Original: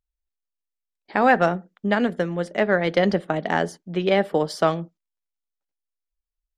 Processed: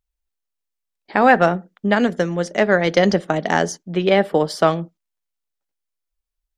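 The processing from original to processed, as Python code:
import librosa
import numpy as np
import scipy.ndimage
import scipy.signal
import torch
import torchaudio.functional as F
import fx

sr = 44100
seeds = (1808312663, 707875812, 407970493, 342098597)

y = fx.peak_eq(x, sr, hz=6100.0, db=11.5, octaves=0.57, at=(1.96, 3.83))
y = y * 10.0 ** (4.0 / 20.0)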